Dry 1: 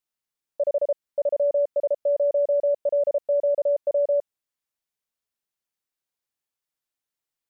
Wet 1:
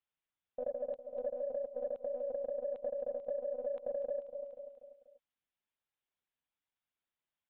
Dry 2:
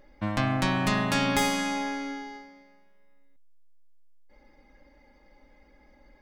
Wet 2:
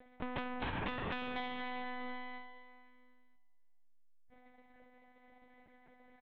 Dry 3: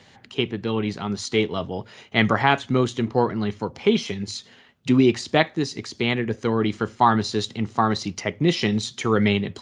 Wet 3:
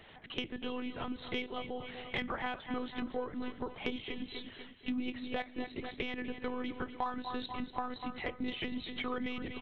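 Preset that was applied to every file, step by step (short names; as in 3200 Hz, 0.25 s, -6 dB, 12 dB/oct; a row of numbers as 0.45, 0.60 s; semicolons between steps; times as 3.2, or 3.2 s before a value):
monotone LPC vocoder at 8 kHz 250 Hz; feedback echo 0.243 s, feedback 46%, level -14.5 dB; in parallel at -11 dB: soft clip -17.5 dBFS; on the sum: low shelf 91 Hz -9.5 dB; compressor 4:1, threshold -32 dBFS; gain -4 dB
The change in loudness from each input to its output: -15.5, -14.5, -16.5 LU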